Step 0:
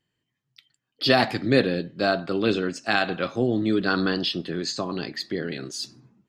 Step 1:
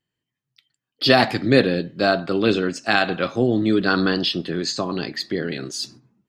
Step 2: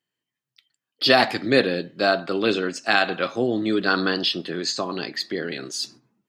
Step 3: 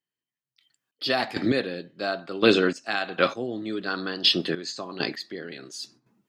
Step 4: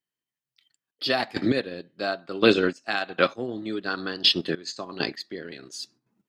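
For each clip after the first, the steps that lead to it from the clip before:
gate -46 dBFS, range -8 dB; trim +4 dB
high-pass 360 Hz 6 dB/octave
trance gate "....xx...x.." 99 bpm -12 dB; trim +3.5 dB
transient shaper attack +1 dB, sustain -8 dB

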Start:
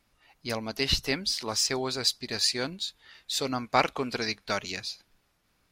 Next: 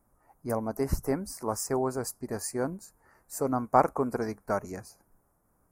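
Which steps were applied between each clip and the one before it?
Chebyshev band-stop 1–9.9 kHz, order 2; trim +3.5 dB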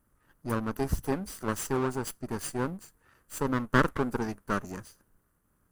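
comb filter that takes the minimum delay 0.66 ms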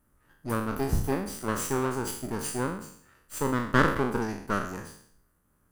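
spectral sustain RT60 0.61 s

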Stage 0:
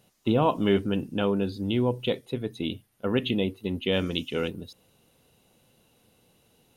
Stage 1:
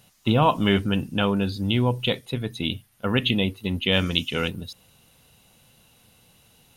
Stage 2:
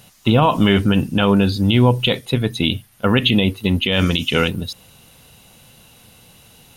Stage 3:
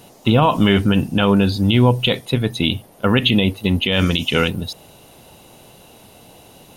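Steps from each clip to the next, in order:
peaking EQ 380 Hz -10 dB 1.7 oct; trim +8.5 dB
loudness maximiser +13.5 dB; trim -4 dB
band noise 130–840 Hz -49 dBFS

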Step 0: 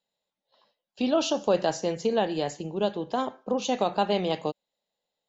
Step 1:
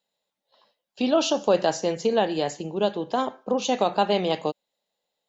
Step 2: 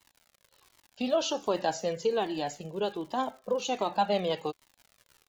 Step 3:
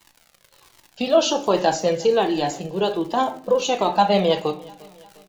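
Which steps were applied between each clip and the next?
bass shelf 130 Hz -7 dB; trim +3.5 dB
crackle 120 per s -37 dBFS; Shepard-style flanger falling 1.3 Hz; trim -1.5 dB
feedback delay 353 ms, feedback 52%, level -23.5 dB; simulated room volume 320 m³, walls furnished, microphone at 0.76 m; trim +9 dB

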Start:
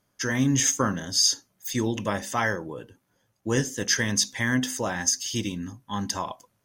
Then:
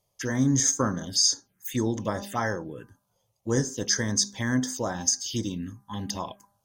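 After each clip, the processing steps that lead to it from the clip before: de-hum 200.9 Hz, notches 8; touch-sensitive phaser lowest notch 260 Hz, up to 2.7 kHz, full sweep at -24 dBFS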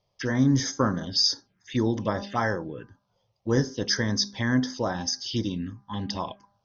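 steep low-pass 5.7 kHz 72 dB/octave; trim +2 dB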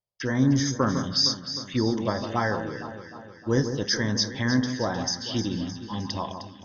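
echo whose repeats swap between lows and highs 154 ms, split 1.5 kHz, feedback 73%, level -8 dB; gate with hold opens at -40 dBFS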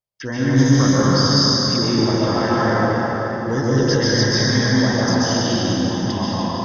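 plate-style reverb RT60 4.6 s, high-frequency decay 0.55×, pre-delay 115 ms, DRR -9 dB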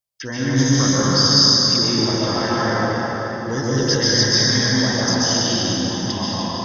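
treble shelf 2.8 kHz +10 dB; trim -3 dB

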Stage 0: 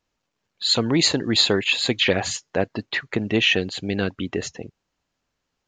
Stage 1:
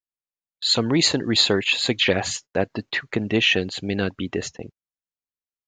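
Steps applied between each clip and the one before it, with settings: gate -38 dBFS, range -30 dB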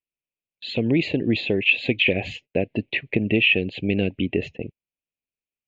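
compression, threshold -20 dBFS, peak gain reduction 7 dB; FFT filter 330 Hz 0 dB, 610 Hz -2 dB, 1.3 kHz -28 dB, 2.5 kHz +6 dB, 5.6 kHz -30 dB; trim +4.5 dB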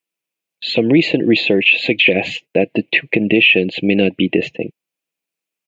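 high-pass 200 Hz 12 dB/octave; comb 6.1 ms, depth 31%; loudness maximiser +11 dB; trim -1 dB

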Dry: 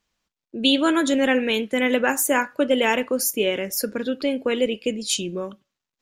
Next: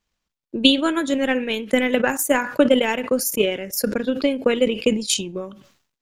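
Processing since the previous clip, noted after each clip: transient shaper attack +10 dB, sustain -8 dB; bass shelf 120 Hz +5.5 dB; decay stretcher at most 100 dB/s; trim -3.5 dB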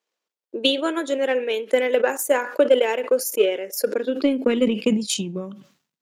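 high-pass sweep 440 Hz -> 170 Hz, 3.84–4.96 s; in parallel at -9 dB: saturation -13.5 dBFS, distortion -9 dB; on the sum: trim -6 dB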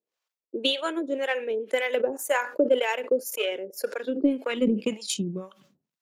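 harmonic tremolo 1.9 Hz, depth 100%, crossover 580 Hz

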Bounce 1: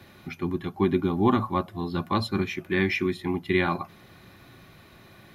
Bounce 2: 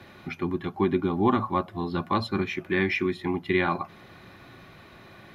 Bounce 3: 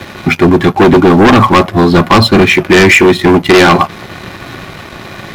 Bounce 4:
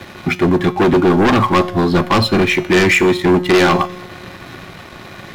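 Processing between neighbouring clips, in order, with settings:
low-pass 2.9 kHz 6 dB/octave; bass shelf 290 Hz -5.5 dB; in parallel at -2 dB: compression, threshold -33 dBFS, peak gain reduction 14 dB
waveshaping leveller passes 2; sine folder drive 6 dB, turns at -10 dBFS; trim +8.5 dB
feedback comb 180 Hz, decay 0.84 s, harmonics all, mix 60%

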